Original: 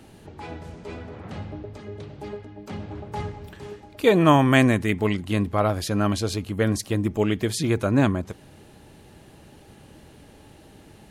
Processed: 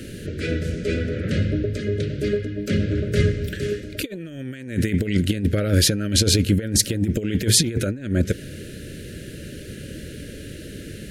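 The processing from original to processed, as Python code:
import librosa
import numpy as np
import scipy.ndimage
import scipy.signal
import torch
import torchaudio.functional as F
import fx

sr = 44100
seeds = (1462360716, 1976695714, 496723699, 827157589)

y = scipy.signal.sosfilt(scipy.signal.cheby1(3, 1.0, [550.0, 1500.0], 'bandstop', fs=sr, output='sos'), x)
y = fx.over_compress(y, sr, threshold_db=-28.0, ratio=-0.5)
y = y * 10.0 ** (8.5 / 20.0)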